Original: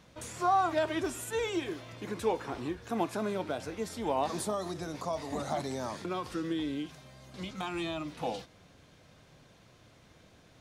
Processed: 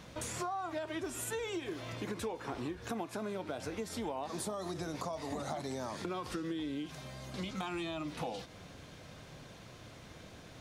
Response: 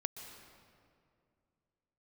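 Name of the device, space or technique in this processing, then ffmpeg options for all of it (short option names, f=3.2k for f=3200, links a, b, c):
serial compression, peaks first: -af "acompressor=threshold=-38dB:ratio=6,acompressor=threshold=-50dB:ratio=1.5,volume=7dB"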